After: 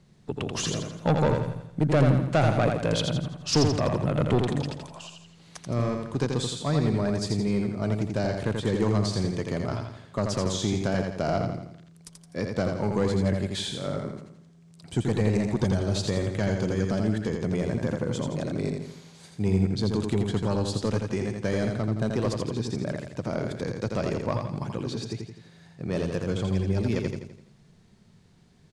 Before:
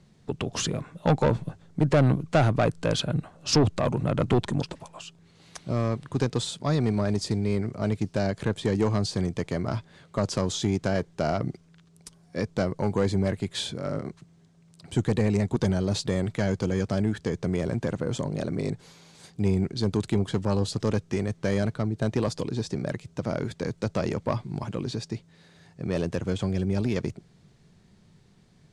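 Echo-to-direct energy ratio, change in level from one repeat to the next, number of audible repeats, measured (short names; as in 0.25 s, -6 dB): -3.5 dB, -6.5 dB, 5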